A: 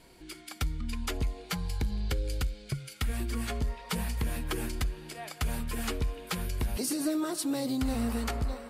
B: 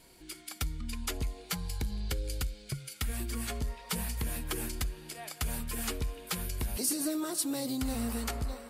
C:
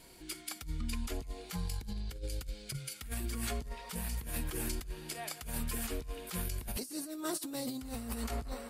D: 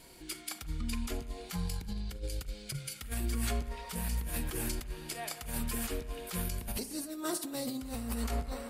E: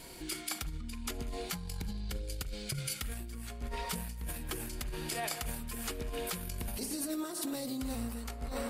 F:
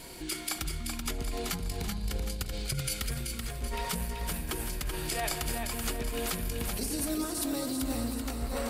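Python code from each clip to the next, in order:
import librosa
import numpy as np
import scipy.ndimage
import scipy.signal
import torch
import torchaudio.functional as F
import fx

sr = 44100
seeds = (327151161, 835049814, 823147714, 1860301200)

y1 = fx.high_shelf(x, sr, hz=5400.0, db=9.5)
y1 = y1 * 10.0 ** (-3.5 / 20.0)
y2 = fx.over_compress(y1, sr, threshold_db=-36.0, ratio=-0.5)
y2 = y2 * 10.0 ** (-1.0 / 20.0)
y3 = fx.rev_spring(y2, sr, rt60_s=1.1, pass_ms=(34,), chirp_ms=55, drr_db=12.0)
y3 = y3 * 10.0 ** (1.5 / 20.0)
y4 = fx.over_compress(y3, sr, threshold_db=-40.0, ratio=-1.0)
y4 = y4 * 10.0 ** (2.0 / 20.0)
y5 = fx.echo_feedback(y4, sr, ms=382, feedback_pct=45, wet_db=-5.0)
y5 = y5 * 10.0 ** (3.5 / 20.0)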